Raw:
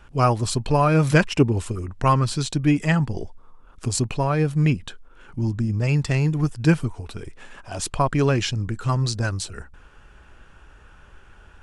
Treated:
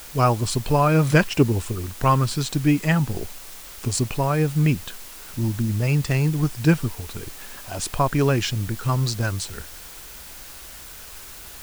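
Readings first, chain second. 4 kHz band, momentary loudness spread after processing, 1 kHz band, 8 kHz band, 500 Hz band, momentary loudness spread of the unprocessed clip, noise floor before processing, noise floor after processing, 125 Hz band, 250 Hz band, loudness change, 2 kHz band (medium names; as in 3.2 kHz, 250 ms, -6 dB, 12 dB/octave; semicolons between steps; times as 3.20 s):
+0.5 dB, 18 LU, 0.0 dB, +1.5 dB, 0.0 dB, 15 LU, -50 dBFS, -41 dBFS, 0.0 dB, 0.0 dB, 0.0 dB, 0.0 dB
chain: added noise white -41 dBFS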